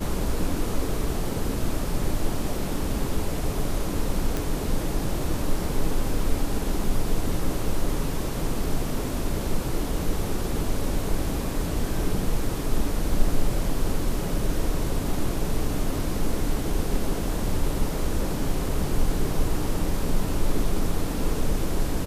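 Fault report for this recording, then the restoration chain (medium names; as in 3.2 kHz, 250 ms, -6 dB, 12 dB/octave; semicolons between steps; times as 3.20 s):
4.37 s: pop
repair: de-click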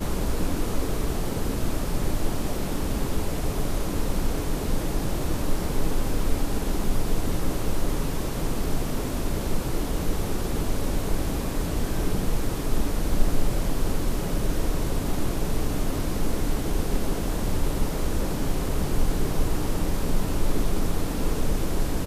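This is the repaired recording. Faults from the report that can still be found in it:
nothing left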